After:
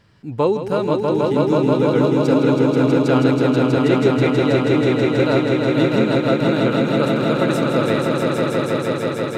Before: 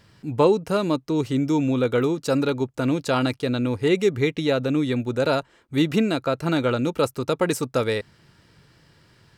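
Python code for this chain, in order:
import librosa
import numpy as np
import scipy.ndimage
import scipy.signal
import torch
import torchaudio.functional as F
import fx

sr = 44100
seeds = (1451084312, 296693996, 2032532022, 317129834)

p1 = fx.high_shelf(x, sr, hz=5300.0, db=-9.0)
y = p1 + fx.echo_swell(p1, sr, ms=161, loudest=5, wet_db=-4.5, dry=0)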